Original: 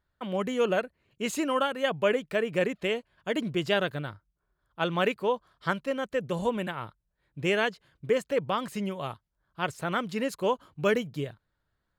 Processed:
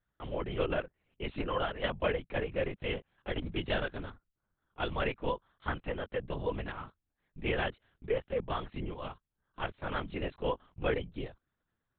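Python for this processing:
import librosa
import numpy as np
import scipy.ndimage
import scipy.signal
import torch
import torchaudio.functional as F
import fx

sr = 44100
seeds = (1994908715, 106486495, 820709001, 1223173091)

y = fx.lpc_vocoder(x, sr, seeds[0], excitation='whisper', order=10)
y = F.gain(torch.from_numpy(y), -6.0).numpy()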